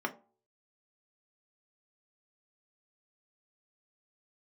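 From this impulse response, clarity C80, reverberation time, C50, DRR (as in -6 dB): 21.0 dB, 0.45 s, 16.5 dB, 1.5 dB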